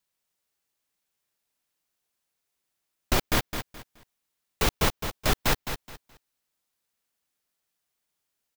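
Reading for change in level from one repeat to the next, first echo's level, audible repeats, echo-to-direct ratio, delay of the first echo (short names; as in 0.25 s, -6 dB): -12.0 dB, -8.5 dB, 3, -8.0 dB, 0.212 s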